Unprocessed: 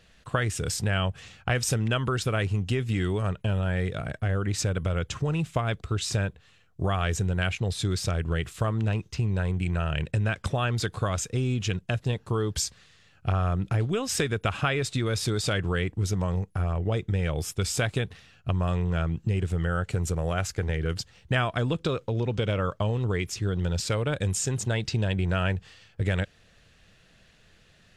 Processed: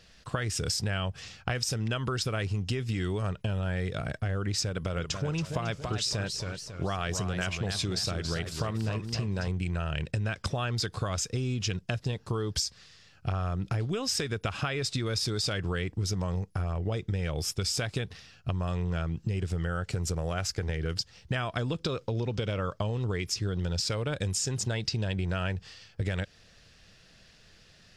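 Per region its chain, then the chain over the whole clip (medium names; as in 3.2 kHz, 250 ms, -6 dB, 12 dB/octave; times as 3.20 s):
4.69–9.48 s: peaking EQ 80 Hz -5.5 dB 0.88 oct + modulated delay 278 ms, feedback 43%, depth 138 cents, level -8.5 dB
whole clip: peaking EQ 5.1 kHz +10 dB 0.5 oct; compression, threshold -27 dBFS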